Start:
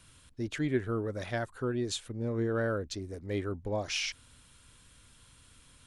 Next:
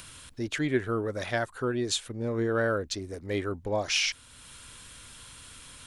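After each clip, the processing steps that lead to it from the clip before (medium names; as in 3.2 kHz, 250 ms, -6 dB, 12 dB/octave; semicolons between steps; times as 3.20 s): bass shelf 380 Hz -7 dB; in parallel at +1.5 dB: upward compressor, threshold -42 dBFS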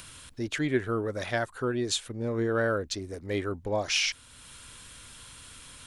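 no audible change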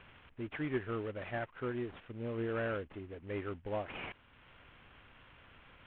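CVSD coder 16 kbps; trim -8 dB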